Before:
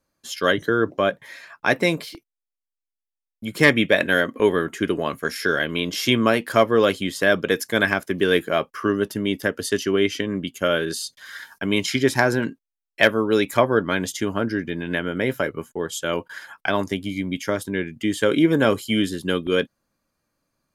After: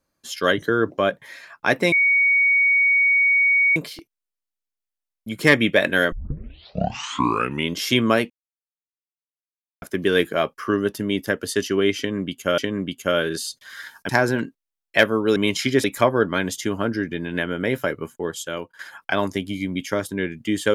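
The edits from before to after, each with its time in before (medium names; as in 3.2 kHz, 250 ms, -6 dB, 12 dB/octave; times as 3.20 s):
1.92 s: add tone 2.24 kHz -14 dBFS 1.84 s
4.28 s: tape start 1.65 s
6.46–7.98 s: mute
10.14–10.74 s: loop, 2 plays
11.65–12.13 s: move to 13.40 s
15.82–16.35 s: fade out, to -14 dB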